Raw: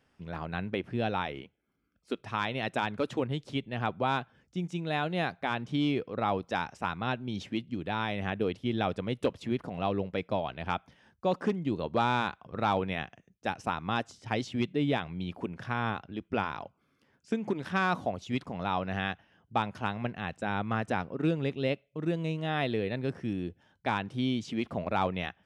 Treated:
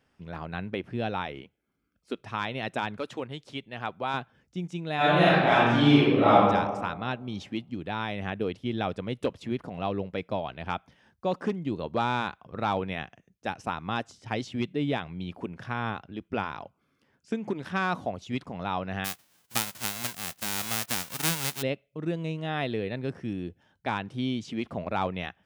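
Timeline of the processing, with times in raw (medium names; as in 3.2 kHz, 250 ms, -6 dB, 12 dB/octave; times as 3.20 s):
2.98–4.14 s: bass shelf 410 Hz -8.5 dB
4.96–6.35 s: reverb throw, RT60 1.4 s, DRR -11 dB
19.04–21.61 s: formants flattened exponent 0.1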